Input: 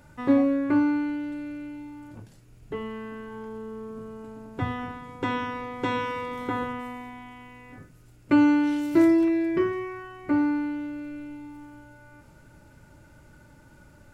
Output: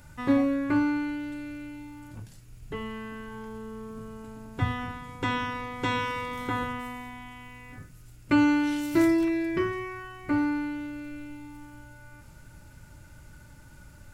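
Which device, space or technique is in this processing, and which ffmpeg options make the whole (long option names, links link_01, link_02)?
smiley-face EQ: -af "lowshelf=frequency=120:gain=4.5,equalizer=frequency=410:width_type=o:width=2.4:gain=-7,highshelf=frequency=5000:gain=5,volume=2.5dB"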